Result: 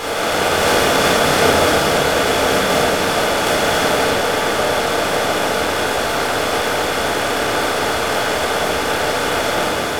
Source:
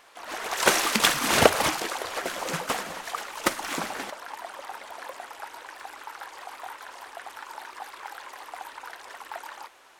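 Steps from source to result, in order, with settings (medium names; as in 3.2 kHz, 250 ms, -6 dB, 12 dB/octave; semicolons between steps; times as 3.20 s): spectral levelling over time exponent 0.2; simulated room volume 510 m³, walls mixed, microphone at 4 m; trim -10.5 dB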